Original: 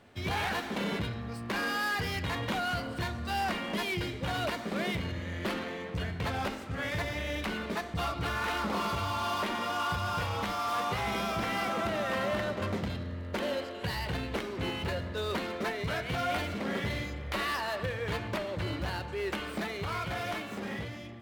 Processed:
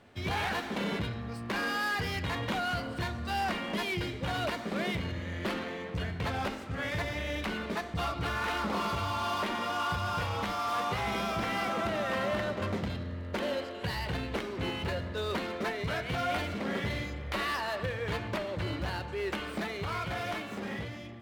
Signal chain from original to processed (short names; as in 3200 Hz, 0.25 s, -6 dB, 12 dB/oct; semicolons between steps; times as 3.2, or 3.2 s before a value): high shelf 8500 Hz -4 dB